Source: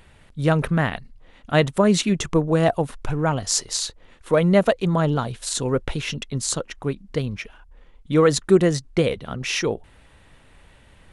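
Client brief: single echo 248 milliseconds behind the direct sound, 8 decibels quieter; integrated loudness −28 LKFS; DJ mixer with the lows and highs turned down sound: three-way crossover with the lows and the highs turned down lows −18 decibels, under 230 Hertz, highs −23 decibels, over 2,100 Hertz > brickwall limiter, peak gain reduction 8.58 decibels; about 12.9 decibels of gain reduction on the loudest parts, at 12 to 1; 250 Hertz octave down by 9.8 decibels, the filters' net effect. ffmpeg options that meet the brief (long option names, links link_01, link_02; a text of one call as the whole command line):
ffmpeg -i in.wav -filter_complex "[0:a]equalizer=frequency=250:width_type=o:gain=-8.5,acompressor=threshold=-27dB:ratio=12,acrossover=split=230 2100:gain=0.126 1 0.0708[link_01][link_02][link_03];[link_01][link_02][link_03]amix=inputs=3:normalize=0,aecho=1:1:248:0.398,volume=10.5dB,alimiter=limit=-15dB:level=0:latency=1" out.wav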